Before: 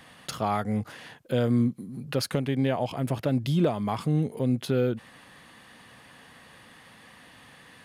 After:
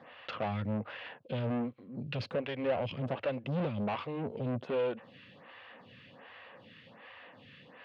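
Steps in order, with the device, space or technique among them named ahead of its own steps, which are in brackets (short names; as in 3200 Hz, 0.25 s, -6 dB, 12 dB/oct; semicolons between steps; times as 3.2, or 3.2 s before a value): vibe pedal into a guitar amplifier (photocell phaser 1.3 Hz; tube stage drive 33 dB, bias 0.55; speaker cabinet 99–3700 Hz, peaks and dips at 100 Hz +5 dB, 330 Hz -3 dB, 540 Hz +7 dB, 2700 Hz +6 dB); gain +2.5 dB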